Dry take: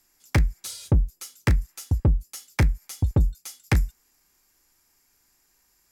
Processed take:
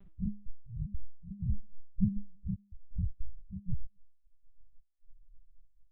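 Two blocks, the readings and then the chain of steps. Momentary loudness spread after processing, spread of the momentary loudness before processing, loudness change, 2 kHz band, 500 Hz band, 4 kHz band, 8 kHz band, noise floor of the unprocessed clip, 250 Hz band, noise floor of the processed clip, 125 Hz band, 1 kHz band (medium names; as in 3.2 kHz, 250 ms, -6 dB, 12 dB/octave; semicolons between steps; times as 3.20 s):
16 LU, 9 LU, -13.5 dB, under -40 dB, under -40 dB, under -40 dB, under -40 dB, -67 dBFS, -5.5 dB, -66 dBFS, -14.5 dB, under -40 dB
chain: reverse spectral sustain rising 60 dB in 0.54 s; bass shelf 260 Hz +6 dB; peak limiter -13.5 dBFS, peak gain reduction 8.5 dB; reverse; upward compressor, threshold -31 dBFS; reverse; trance gate "x.x..x.x" 159 bpm -60 dB; loudest bins only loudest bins 4; feedback comb 200 Hz, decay 0.52 s, harmonics all, mix 100%; LPC vocoder at 8 kHz pitch kept; trim +17 dB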